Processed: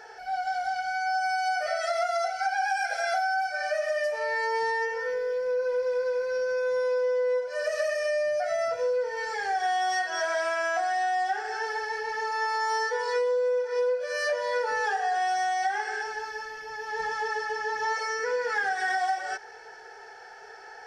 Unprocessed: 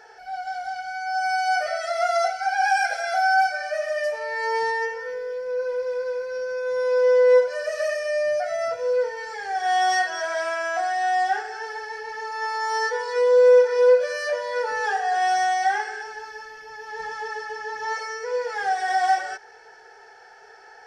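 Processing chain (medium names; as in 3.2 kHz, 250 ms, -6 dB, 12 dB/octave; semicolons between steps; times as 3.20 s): 18.19–18.98 s: fifteen-band graphic EQ 250 Hz +11 dB, 630 Hz -6 dB, 1.6 kHz +6 dB; compression 10:1, threshold -26 dBFS, peak gain reduction 15 dB; trim +2 dB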